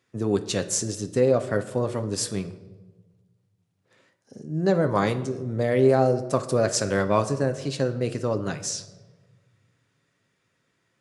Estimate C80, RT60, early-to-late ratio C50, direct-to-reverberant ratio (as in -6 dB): 15.5 dB, 1.3 s, 13.0 dB, 7.5 dB